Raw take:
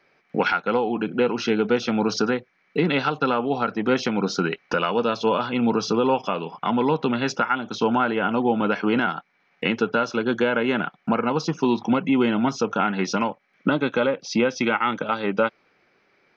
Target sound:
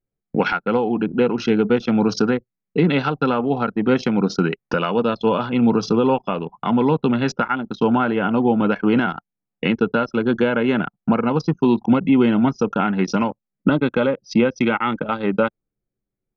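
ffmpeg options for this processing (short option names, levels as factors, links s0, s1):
-af "anlmdn=39.8,lowshelf=f=300:g=9"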